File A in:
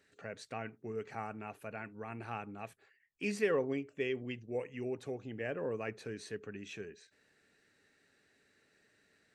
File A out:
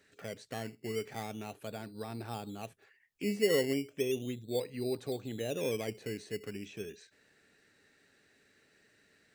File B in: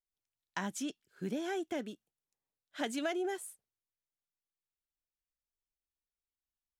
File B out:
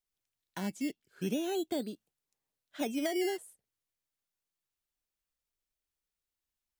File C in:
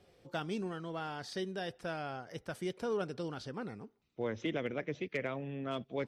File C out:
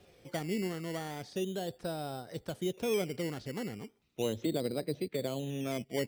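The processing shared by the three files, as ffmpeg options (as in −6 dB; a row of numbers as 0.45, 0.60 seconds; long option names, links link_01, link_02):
-filter_complex "[0:a]acrossover=split=870[link_01][link_02];[link_01]acrusher=samples=14:mix=1:aa=0.000001:lfo=1:lforange=8.4:lforate=0.36[link_03];[link_02]acompressor=threshold=-55dB:ratio=6[link_04];[link_03][link_04]amix=inputs=2:normalize=0,volume=4dB"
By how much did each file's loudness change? +3.0, +3.0, +3.0 LU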